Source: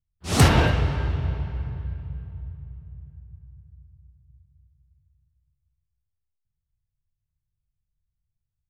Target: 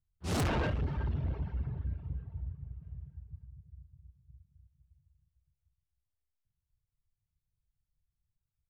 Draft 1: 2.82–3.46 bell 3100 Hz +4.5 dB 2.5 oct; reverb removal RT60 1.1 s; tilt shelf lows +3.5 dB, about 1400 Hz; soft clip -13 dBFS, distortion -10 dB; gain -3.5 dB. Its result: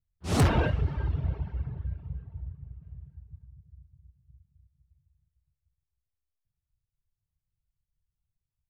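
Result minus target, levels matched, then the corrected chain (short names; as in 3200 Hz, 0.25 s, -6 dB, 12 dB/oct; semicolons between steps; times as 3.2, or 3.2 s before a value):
soft clip: distortion -7 dB
2.82–3.46 bell 3100 Hz +4.5 dB 2.5 oct; reverb removal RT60 1.1 s; tilt shelf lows +3.5 dB, about 1400 Hz; soft clip -24.5 dBFS, distortion -3 dB; gain -3.5 dB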